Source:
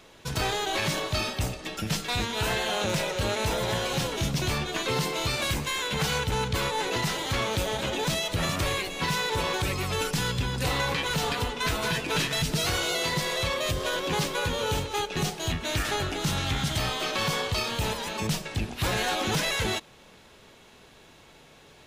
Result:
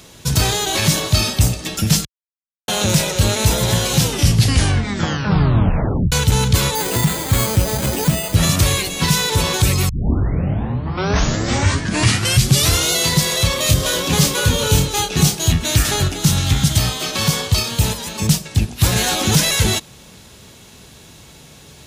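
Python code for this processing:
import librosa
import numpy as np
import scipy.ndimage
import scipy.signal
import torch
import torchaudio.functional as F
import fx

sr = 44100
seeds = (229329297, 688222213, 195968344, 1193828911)

y = fx.resample_bad(x, sr, factor=8, down='filtered', up='hold', at=(6.75, 8.35))
y = fx.doubler(y, sr, ms=28.0, db=-4.5, at=(13.56, 15.35))
y = fx.upward_expand(y, sr, threshold_db=-36.0, expansion=1.5, at=(16.08, 18.96))
y = fx.edit(y, sr, fx.silence(start_s=2.05, length_s=0.63),
    fx.tape_stop(start_s=3.95, length_s=2.17),
    fx.tape_start(start_s=9.89, length_s=3.04), tone=tone)
y = scipy.signal.sosfilt(scipy.signal.butter(2, 48.0, 'highpass', fs=sr, output='sos'), y)
y = fx.bass_treble(y, sr, bass_db=11, treble_db=12)
y = F.gain(torch.from_numpy(y), 5.5).numpy()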